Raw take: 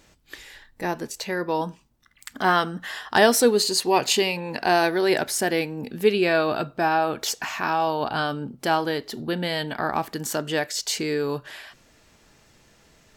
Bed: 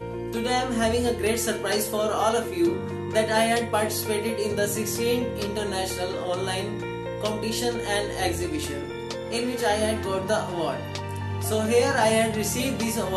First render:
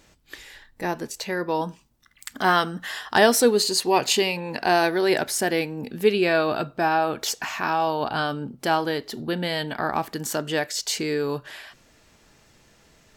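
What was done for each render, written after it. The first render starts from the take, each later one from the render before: 1.69–3.14 s: treble shelf 3.4 kHz +4 dB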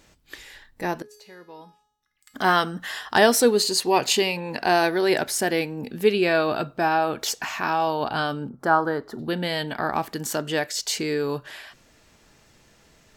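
1.02–2.34 s: feedback comb 420 Hz, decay 0.72 s, mix 90%; 8.49–9.19 s: resonant high shelf 1.9 kHz -10.5 dB, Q 3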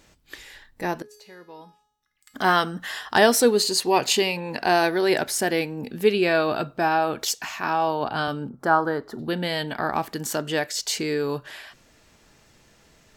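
7.25–8.28 s: three bands expanded up and down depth 40%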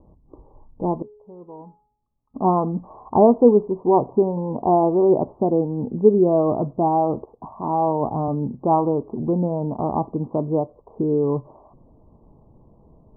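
steep low-pass 1.1 kHz 96 dB/octave; bass shelf 450 Hz +9.5 dB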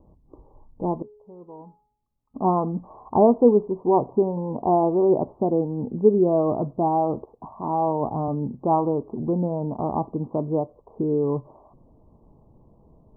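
trim -2.5 dB

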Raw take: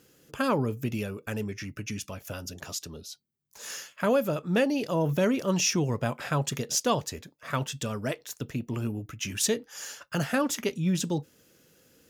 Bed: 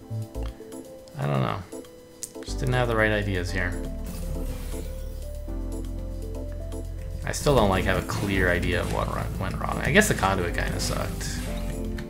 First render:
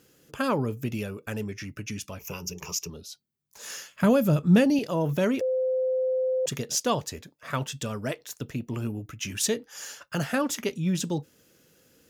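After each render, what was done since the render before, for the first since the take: 2.19–2.90 s: rippled EQ curve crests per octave 0.78, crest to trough 16 dB; 3.93–4.79 s: tone controls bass +14 dB, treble +4 dB; 5.41–6.46 s: bleep 516 Hz -22.5 dBFS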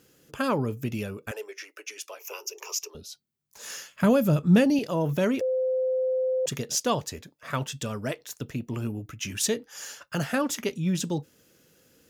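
1.31–2.95 s: steep high-pass 380 Hz 48 dB/octave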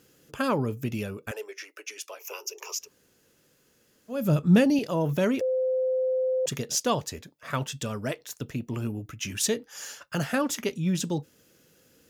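2.82–4.20 s: room tone, crossfade 0.24 s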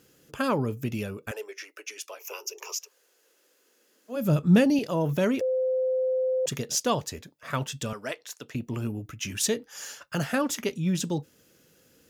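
2.76–4.15 s: high-pass 520 Hz -> 230 Hz 24 dB/octave; 7.93–8.55 s: frequency weighting A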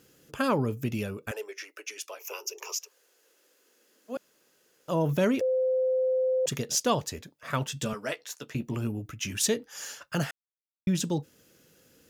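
4.17–4.88 s: room tone; 7.75–8.75 s: doubling 14 ms -7 dB; 10.31–10.87 s: mute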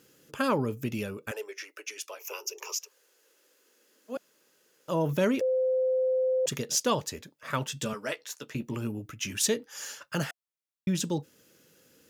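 bass shelf 82 Hz -11 dB; band-stop 710 Hz, Q 12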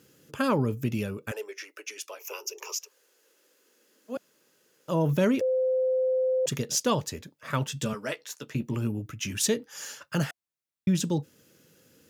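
high-pass 82 Hz; bass shelf 150 Hz +11 dB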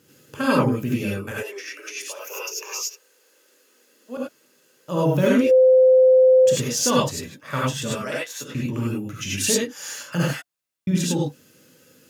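gated-style reverb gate 120 ms rising, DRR -5.5 dB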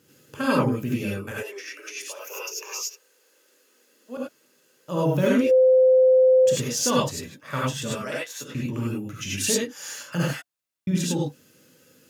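trim -2.5 dB

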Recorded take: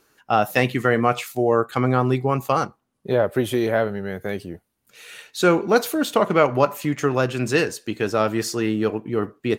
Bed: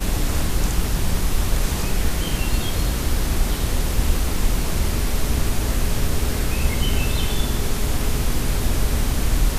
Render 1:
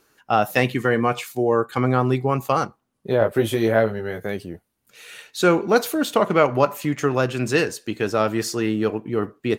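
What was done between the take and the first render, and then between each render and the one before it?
0.74–1.78 s: comb of notches 660 Hz; 3.19–4.26 s: doubling 18 ms -4 dB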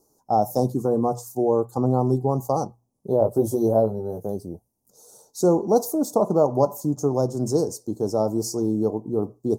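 elliptic band-stop 880–5600 Hz, stop band 80 dB; hum notches 60/120 Hz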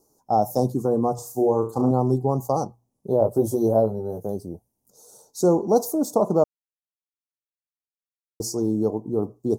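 1.15–1.91 s: flutter echo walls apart 6.1 m, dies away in 0.33 s; 6.44–8.40 s: mute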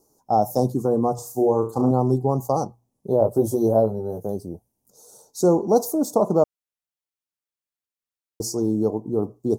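trim +1 dB

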